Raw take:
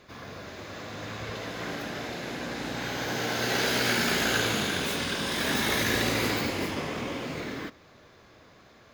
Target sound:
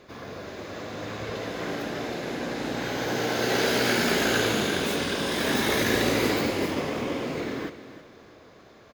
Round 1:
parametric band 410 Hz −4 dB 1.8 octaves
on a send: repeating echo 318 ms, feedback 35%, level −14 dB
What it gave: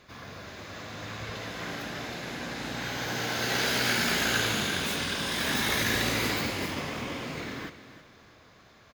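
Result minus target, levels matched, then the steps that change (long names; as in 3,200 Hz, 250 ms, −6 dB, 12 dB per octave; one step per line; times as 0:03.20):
500 Hz band −6.5 dB
change: parametric band 410 Hz +6 dB 1.8 octaves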